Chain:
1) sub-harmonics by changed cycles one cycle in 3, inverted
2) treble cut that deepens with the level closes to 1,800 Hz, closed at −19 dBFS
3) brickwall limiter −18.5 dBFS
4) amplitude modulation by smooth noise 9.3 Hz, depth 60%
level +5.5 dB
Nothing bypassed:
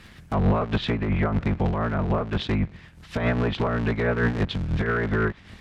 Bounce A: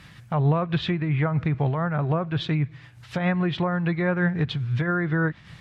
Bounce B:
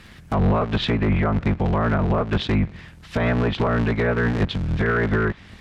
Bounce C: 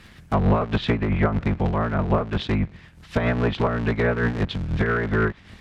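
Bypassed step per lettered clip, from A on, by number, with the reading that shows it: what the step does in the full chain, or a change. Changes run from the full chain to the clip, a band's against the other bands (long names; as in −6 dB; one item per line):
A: 1, 125 Hz band +2.0 dB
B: 4, change in crest factor −2.5 dB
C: 3, change in crest factor +3.5 dB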